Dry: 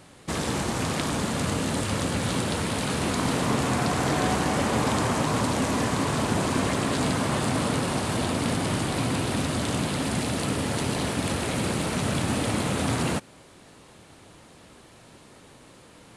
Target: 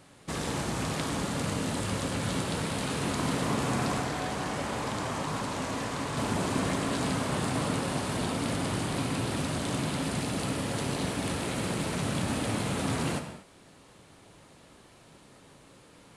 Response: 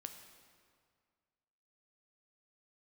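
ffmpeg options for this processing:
-filter_complex "[0:a]asettb=1/sr,asplit=3[a][b][c];[a]atrim=end=3.984[d];[b]atrim=start=3.98:end=6.17,asetpts=PTS-STARTPTS,afade=t=in:d=0.004:c=qsin,afade=t=out:st=2.186:d=0.004:c=qsin,acrossover=split=110|500|7300[e][f][g][h];[e]acompressor=threshold=-38dB:ratio=4[i];[f]acompressor=threshold=-32dB:ratio=4[j];[g]acompressor=threshold=-28dB:ratio=4[k];[h]acompressor=threshold=-46dB:ratio=4[l];[i][j][k][l]amix=inputs=4:normalize=0[m];[c]atrim=start=6.166[n];[d][m]acrossfade=d=0.004:c1=hsin:c2=qsin[o];[o][n]acrossfade=d=0.004:c1=qsin:c2=hsin[p];[1:a]atrim=start_sample=2205,afade=t=out:st=0.3:d=0.01,atrim=end_sample=13671[q];[p][q]afir=irnorm=-1:irlink=0"

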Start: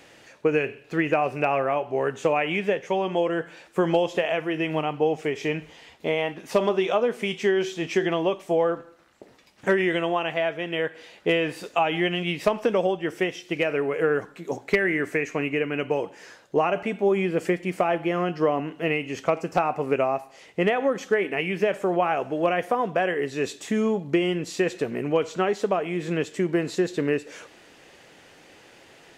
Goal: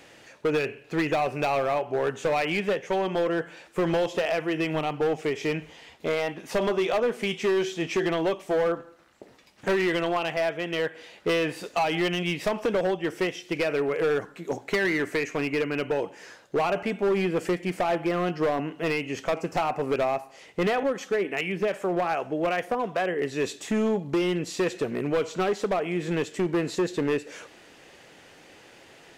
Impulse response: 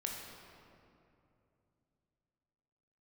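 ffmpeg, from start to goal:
-filter_complex "[0:a]asettb=1/sr,asplit=3[a][b][c];[a]atrim=end=20.834[d];[b]atrim=start=20.83:end=23.22,asetpts=PTS-STARTPTS,afade=t=in:d=0.004:c=qsin,afade=t=out:st=2.386:d=0.004:c=qsin,acrossover=split=650[e][f];[e]aeval=exprs='val(0)*(1-0.5/2+0.5/2*cos(2*PI*2.6*n/s))':c=same[g];[f]aeval=exprs='val(0)*(1-0.5/2-0.5/2*cos(2*PI*2.6*n/s))':c=same[h];[g][h]amix=inputs=2:normalize=0[i];[c]atrim=start=23.216[j];[d][i]acrossfade=d=0.004:c1=hsin:c2=qsin[k];[k][j]acrossfade=d=0.004:c1=qsin:c2=hsin,asoftclip=type=hard:threshold=-20dB"

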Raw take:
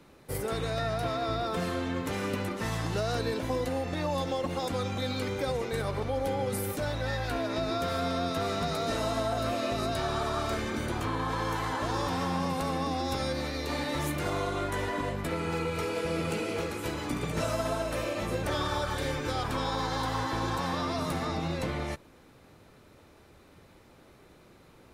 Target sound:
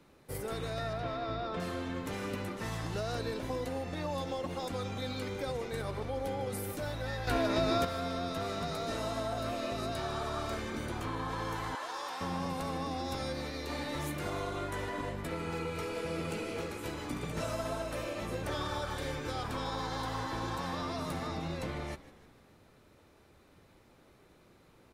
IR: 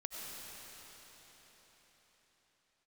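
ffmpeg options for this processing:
-filter_complex "[0:a]asettb=1/sr,asplit=3[a][b][c];[a]atrim=end=0.934[d];[b]atrim=start=0.93:end=1.6,asetpts=PTS-STARTPTS,afade=t=in:d=0.004:c=qsin,afade=t=out:st=0.666:d=0.004:c=qsin,lowpass=4.1k[e];[c]atrim=start=1.596[f];[d][e]acrossfade=d=0.004:c1=hsin:c2=qsin[g];[g][f]acrossfade=d=0.004:c1=qsin:c2=hsin,asplit=2[h][i];[i]asplit=5[j][k][l][m][n];[j]adelay=153,afreqshift=-73,volume=-17dB[o];[k]adelay=306,afreqshift=-146,volume=-22dB[p];[l]adelay=459,afreqshift=-219,volume=-27.1dB[q];[m]adelay=612,afreqshift=-292,volume=-32.1dB[r];[n]adelay=765,afreqshift=-365,volume=-37.1dB[s];[o][p][q][r][s]amix=inputs=5:normalize=0[t];[h][t]amix=inputs=2:normalize=0,asettb=1/sr,asplit=3[u][v][w];[u]atrim=end=7.274[x];[v]atrim=start=7.27:end=7.85,asetpts=PTS-STARTPTS,afade=t=in:d=0.004:c=qsin,afade=t=out:st=0.576:d=0.004:c=qsin,acontrast=81[y];[w]atrim=start=7.846[z];[x][y]acrossfade=d=0.004:c1=hsin:c2=qsin[aa];[aa][z]acrossfade=d=0.004:c1=qsin:c2=hsin,asettb=1/sr,asplit=3[ab][ac][ad];[ab]atrim=end=11.754[ae];[ac]atrim=start=11.75:end=12.21,asetpts=PTS-STARTPTS,afade=t=in:d=0.004:c=qsin,afade=t=out:st=0.456:d=0.004:c=qsin,highpass=680[af];[ad]atrim=start=12.206[ag];[ae][af]acrossfade=d=0.004:c1=hsin:c2=qsin[ah];[ah][ag]acrossfade=d=0.004:c1=qsin:c2=hsin,volume=-5.5dB"

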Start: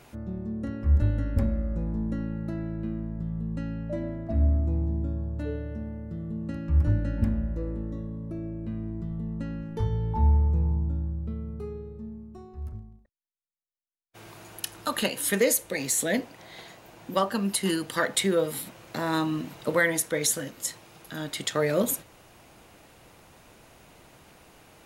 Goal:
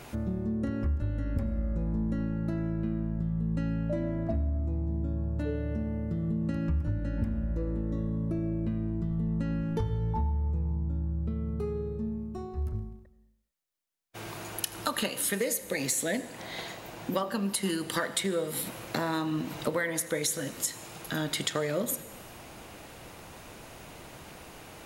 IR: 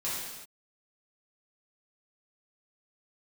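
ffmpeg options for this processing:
-filter_complex "[0:a]acompressor=threshold=-34dB:ratio=6,asplit=2[a][b];[1:a]atrim=start_sample=2205,adelay=78[c];[b][c]afir=irnorm=-1:irlink=0,volume=-21dB[d];[a][d]amix=inputs=2:normalize=0,volume=6.5dB"

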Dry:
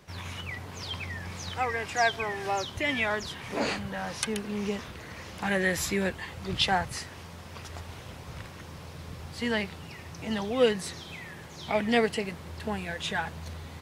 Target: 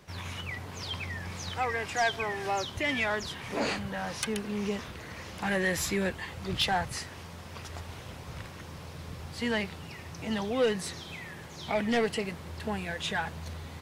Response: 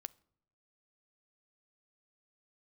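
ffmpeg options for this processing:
-af "asoftclip=type=tanh:threshold=-19.5dB"

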